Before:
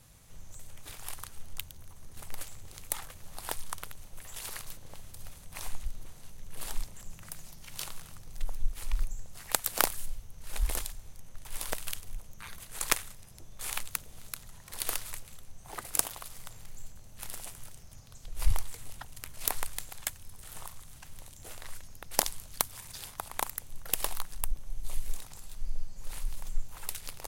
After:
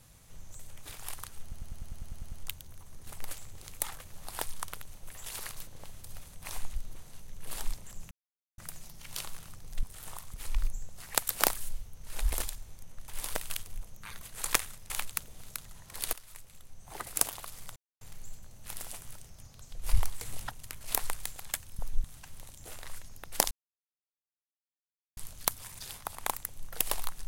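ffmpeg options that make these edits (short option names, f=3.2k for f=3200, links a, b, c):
-filter_complex "[0:a]asplit=21[a][b][c][d][e][f][g][h][i][j][k][l][m][n][o][p][q][r][s][t][u];[a]atrim=end=1.522[v];[b]atrim=start=1.418:end=1.522[w];[c]atrim=start=1.418:end=1.522[x];[d]atrim=start=1.418:end=1.522[y];[e]atrim=start=1.418:end=1.522[z];[f]atrim=start=1.418:end=1.522[aa];[g]atrim=start=1.418:end=1.522[ab];[h]atrim=start=1.418:end=1.522[ac];[i]atrim=start=1.418:end=1.522[ad];[j]atrim=start=1.418:end=7.21,asetpts=PTS-STARTPTS,afade=t=out:st=5.788:d=0.004:c=hsin,apad=pad_dur=0.47[ae];[k]atrim=start=7.21:end=8.462,asetpts=PTS-STARTPTS,afade=t=in:d=0.004:c=hsin[af];[l]atrim=start=20.318:end=20.832[ag];[m]atrim=start=8.708:end=13.272[ah];[n]atrim=start=13.678:end=14.91,asetpts=PTS-STARTPTS,afade=t=out:st=1.228:d=0.004:c=hsin:silence=0.11885[ai];[o]atrim=start=14.91:end=16.54,asetpts=PTS-STARTPTS,afade=t=in:d=0.82:silence=0.11885,afade=t=out:st=1.626:d=0.004:c=hsin,apad=pad_dur=0.25[aj];[p]atrim=start=16.54:end=18.742,asetpts=PTS-STARTPTS,afade=t=in:d=0.004:c=hsin[ak];[q]atrim=start=18.738:end=19.042,asetpts=PTS-STARTPTS,volume=5dB[al];[r]atrim=start=19.038:end=20.322[am];[s]atrim=start=8.458:end=8.712[an];[t]atrim=start=20.828:end=22.3,asetpts=PTS-STARTPTS,afade=t=out:st=1.468:d=0.004:c=hsin,apad=pad_dur=1.66[ao];[u]atrim=start=22.3,asetpts=PTS-STARTPTS,afade=t=in:d=0.004:c=hsin[ap];[v][w]acrossfade=d=0.004:c1=hsin:c2=hsin[aq];[aq][x]acrossfade=d=0.004:c1=hsin:c2=hsin[ar];[ar][y]acrossfade=d=0.004:c1=hsin:c2=hsin[as];[as][z]acrossfade=d=0.004:c1=hsin:c2=hsin[at];[at][aa]acrossfade=d=0.004:c1=hsin:c2=hsin[au];[au][ab]acrossfade=d=0.004:c1=hsin:c2=hsin[av];[av][ac]acrossfade=d=0.004:c1=hsin:c2=hsin[aw];[aw][ad]acrossfade=d=0.004:c1=hsin:c2=hsin[ax];[ae][af]concat=n=2:v=0:a=1[ay];[ax][ay]acrossfade=d=0.004:c1=hsin:c2=hsin[az];[az][ag]acrossfade=d=0.004:c1=hsin:c2=hsin[ba];[ba][ah]acrossfade=d=0.004:c1=hsin:c2=hsin[bb];[ai][aj][ak]concat=n=3:v=0:a=1[bc];[bb][bc]acrossfade=d=0.004:c1=hsin:c2=hsin[bd];[bd][al]acrossfade=d=0.004:c1=hsin:c2=hsin[be];[be][am]acrossfade=d=0.004:c1=hsin:c2=hsin[bf];[bf][an]acrossfade=d=0.004:c1=hsin:c2=hsin[bg];[ao][ap]concat=n=2:v=0:a=1[bh];[bg][bh]acrossfade=d=0.004:c1=hsin:c2=hsin"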